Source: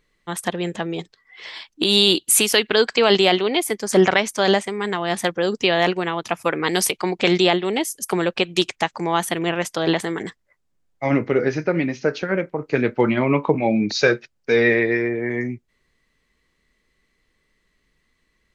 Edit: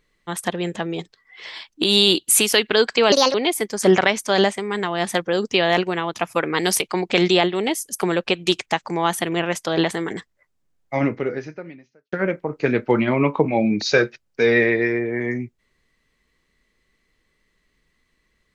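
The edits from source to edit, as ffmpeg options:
-filter_complex "[0:a]asplit=4[a][b][c][d];[a]atrim=end=3.124[e];[b]atrim=start=3.12:end=3.44,asetpts=PTS-STARTPTS,asetrate=63063,aresample=44100[f];[c]atrim=start=3.436:end=12.22,asetpts=PTS-STARTPTS,afade=t=out:st=7.604:d=1.18:c=qua[g];[d]atrim=start=12.22,asetpts=PTS-STARTPTS,afade=t=in:d=0.004:c=hsin[h];[e][f]acrossfade=d=0.004:c1=hsin:c2=hsin[i];[g][h]concat=n=2:v=0:a=1[j];[i][j]acrossfade=d=0.004:c1=hsin:c2=hsin"

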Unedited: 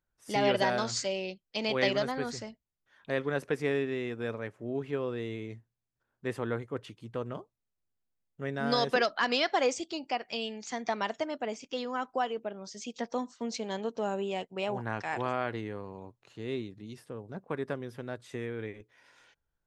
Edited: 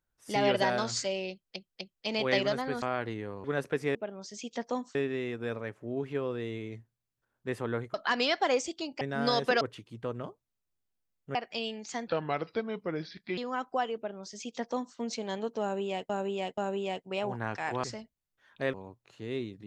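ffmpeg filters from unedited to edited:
-filter_complex "[0:a]asplit=17[a][b][c][d][e][f][g][h][i][j][k][l][m][n][o][p][q];[a]atrim=end=1.562[r];[b]atrim=start=1.308:end=1.562[s];[c]atrim=start=1.308:end=2.322[t];[d]atrim=start=15.288:end=15.912[u];[e]atrim=start=3.218:end=3.732[v];[f]atrim=start=12.378:end=13.382[w];[g]atrim=start=3.728:end=6.722[x];[h]atrim=start=9.058:end=10.132[y];[i]atrim=start=8.458:end=9.062[z];[j]atrim=start=6.718:end=8.462[aa];[k]atrim=start=10.128:end=10.854[ab];[l]atrim=start=10.85:end=11.79,asetpts=PTS-STARTPTS,asetrate=31752,aresample=44100[ac];[m]atrim=start=11.786:end=14.512[ad];[n]atrim=start=14.028:end=14.512[ae];[o]atrim=start=14.028:end=15.292[af];[p]atrim=start=2.318:end=3.222[ag];[q]atrim=start=15.908[ah];[r][s]acrossfade=d=0.004:c1=hsin:c2=hsin[ai];[ai][t]acrossfade=d=0.004:c1=hsin:c2=hsin[aj];[aj][u]acrossfade=d=0.004:c1=hsin:c2=hsin[ak];[ak][v]acrossfade=d=0.004:c1=hsin:c2=hsin[al];[al][w]acrossfade=d=0.004:c1=hsin:c2=hsin[am];[am][x]acrossfade=d=0.004:c1=hsin:c2=hsin[an];[an][y]acrossfade=d=0.004:c1=hsin:c2=hsin[ao];[ao][z]acrossfade=d=0.004:c1=hsin:c2=hsin[ap];[ap][aa]acrossfade=d=0.004:c1=hsin:c2=hsin[aq];[aq][ab]acrossfade=d=0.004:c1=hsin:c2=hsin[ar];[ar][ac]acrossfade=d=0.004:c1=hsin:c2=hsin[as];[as][ad]acrossfade=d=0.004:c1=hsin:c2=hsin[at];[at][ae]acrossfade=d=0.004:c1=hsin:c2=hsin[au];[au][af]acrossfade=d=0.004:c1=hsin:c2=hsin[av];[av][ag]acrossfade=d=0.004:c1=hsin:c2=hsin[aw];[aw][ah]acrossfade=d=0.004:c1=hsin:c2=hsin"

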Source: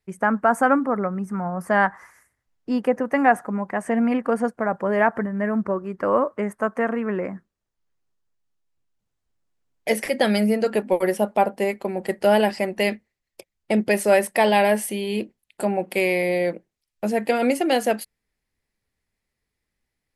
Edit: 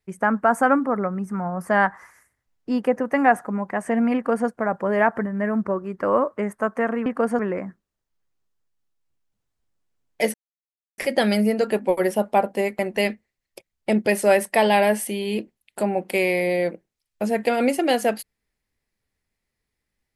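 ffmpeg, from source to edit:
-filter_complex "[0:a]asplit=5[a][b][c][d][e];[a]atrim=end=7.062[f];[b]atrim=start=4.148:end=4.482[g];[c]atrim=start=7.058:end=10.01,asetpts=PTS-STARTPTS,afade=t=out:st=2.948:d=0.004:c=hsin,apad=pad_dur=0.64[h];[d]atrim=start=10.01:end=11.822,asetpts=PTS-STARTPTS,afade=t=in:d=0.004:c=hsin[i];[e]atrim=start=12.608[j];[f][g]acrossfade=d=0.004:c1=hsin:c2=hsin[k];[h][i]concat=n=2:v=0:a=1[l];[k][l]acrossfade=d=0.004:c1=hsin:c2=hsin[m];[m][j]acrossfade=d=0.004:c1=hsin:c2=hsin"

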